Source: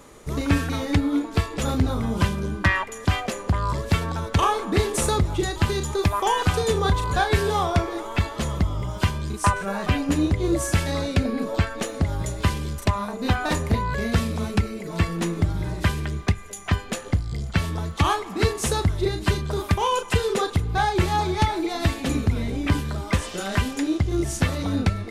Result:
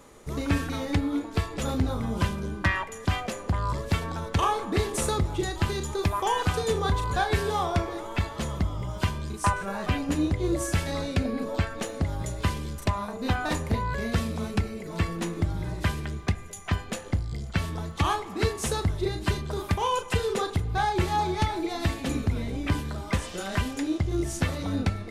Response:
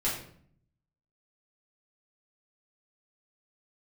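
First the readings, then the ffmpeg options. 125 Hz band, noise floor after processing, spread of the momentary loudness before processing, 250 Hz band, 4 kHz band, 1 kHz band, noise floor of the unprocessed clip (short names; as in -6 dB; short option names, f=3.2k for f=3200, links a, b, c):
-4.5 dB, -40 dBFS, 5 LU, -4.5 dB, -4.5 dB, -3.5 dB, -37 dBFS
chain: -filter_complex "[0:a]asplit=2[a][b];[b]equalizer=f=630:w=0.61:g=8[c];[1:a]atrim=start_sample=2205[d];[c][d]afir=irnorm=-1:irlink=0,volume=-25dB[e];[a][e]amix=inputs=2:normalize=0,volume=-5dB"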